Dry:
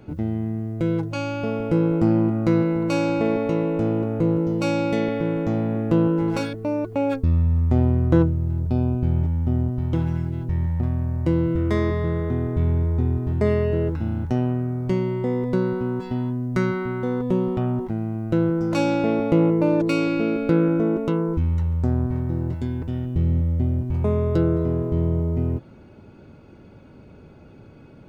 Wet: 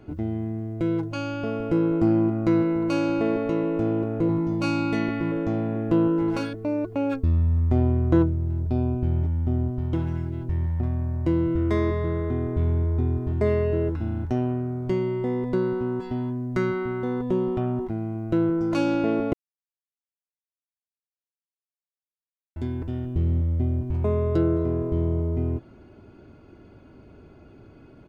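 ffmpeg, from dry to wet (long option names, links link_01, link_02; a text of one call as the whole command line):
ffmpeg -i in.wav -filter_complex "[0:a]asettb=1/sr,asplit=3[link_01][link_02][link_03];[link_01]atrim=end=4.274[link_04];[link_02]atrim=start=4.27:end=5.32,asetpts=PTS-STARTPTS,afade=type=in:duration=0.004:curve=qsin,afade=type=out:start_time=1.046:duration=0.004:curve=qsin,asplit=2[link_05][link_06];[link_06]adelay=17,volume=-4dB[link_07];[link_05][link_07]amix=inputs=2:normalize=0,atrim=end_sample=46305[link_08];[link_03]atrim=start=5.316[link_09];[link_04][link_08]acrossfade=duration=0.004:curve1=hsin:curve2=qsin[link_10];[link_10][link_09]acrossfade=duration=0.004:curve1=qsin:curve2=hsin,asplit=3[link_11][link_12][link_13];[link_11]atrim=end=19.33,asetpts=PTS-STARTPTS,afade=type=out:start_time=19.326:duration=0.004:curve=hsin[link_14];[link_12]atrim=start=19.33:end=22.56,asetpts=PTS-STARTPTS,volume=0[link_15];[link_13]atrim=start=22.56,asetpts=PTS-STARTPTS,afade=type=in:duration=0.004:curve=hsin[link_16];[link_14][link_15][link_16]concat=n=3:v=0:a=1,highshelf=frequency=4900:gain=-5,aecho=1:1:2.9:0.37,volume=-2.5dB" out.wav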